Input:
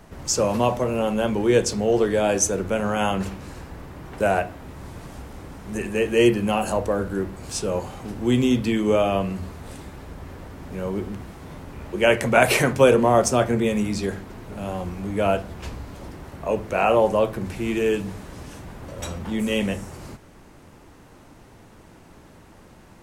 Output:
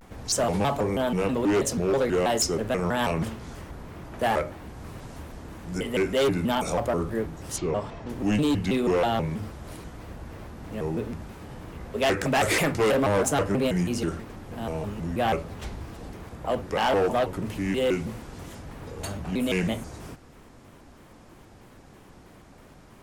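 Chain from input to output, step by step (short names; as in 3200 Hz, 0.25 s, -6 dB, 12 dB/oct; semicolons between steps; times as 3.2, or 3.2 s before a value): overloaded stage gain 17 dB; 7.57–8.09 LPF 4800 Hz 12 dB/oct; shaped vibrato square 3.1 Hz, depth 250 cents; gain -2 dB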